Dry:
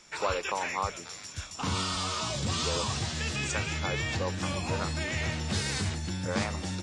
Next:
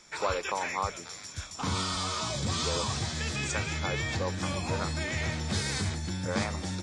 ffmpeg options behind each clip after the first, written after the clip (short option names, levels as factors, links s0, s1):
-af "bandreject=f=2800:w=9.3"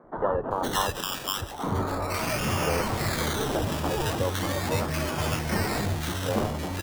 -filter_complex "[0:a]acrusher=samples=16:mix=1:aa=0.000001:lfo=1:lforange=9.6:lforate=0.37,equalizer=f=72:t=o:w=0.43:g=-6,acrossover=split=170|1300[s0][s1][s2];[s0]adelay=40[s3];[s2]adelay=510[s4];[s3][s1][s4]amix=inputs=3:normalize=0,volume=2"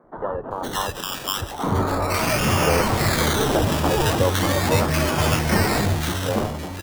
-af "dynaudnorm=f=500:g=5:m=3.76,volume=0.841"